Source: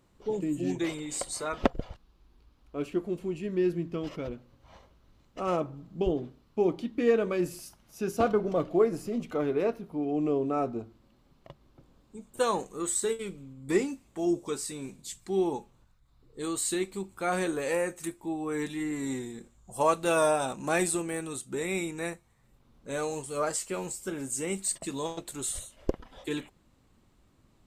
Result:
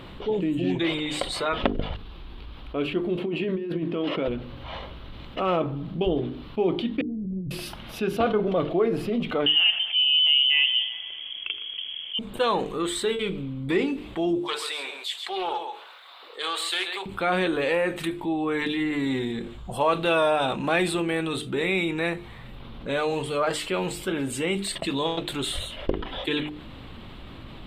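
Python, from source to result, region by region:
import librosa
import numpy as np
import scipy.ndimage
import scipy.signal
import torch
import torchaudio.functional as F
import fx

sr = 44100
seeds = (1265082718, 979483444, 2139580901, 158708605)

y = fx.chain(x, sr, fx.highpass(hz=300.0, slope=12),
    fx.tilt_eq(slope=-2.0),
    fx.over_compress(threshold_db=-36.0, ratio=-1.0), at=(3.17, 4.28))
y = fx.chain(y, sr, fx.cheby2_lowpass(hz=670.0, order=4, stop_db=60),
    fx.over_compress(threshold_db=-43.0, ratio=-1.0),
    fx.doppler_dist(depth_ms=0.12), at=(7.01, 7.51))
y = fx.chain(y, sr, fx.echo_thinned(ms=119, feedback_pct=61, hz=1100.0, wet_db=-15.0),
    fx.freq_invert(carrier_hz=3300), at=(9.46, 12.19))
y = fx.chain(y, sr, fx.highpass(hz=610.0, slope=24),
    fx.echo_single(ms=135, db=-11.0),
    fx.doppler_dist(depth_ms=0.16), at=(14.39, 17.06))
y = fx.high_shelf_res(y, sr, hz=4700.0, db=-12.0, q=3.0)
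y = fx.hum_notches(y, sr, base_hz=50, count=9)
y = fx.env_flatten(y, sr, amount_pct=50)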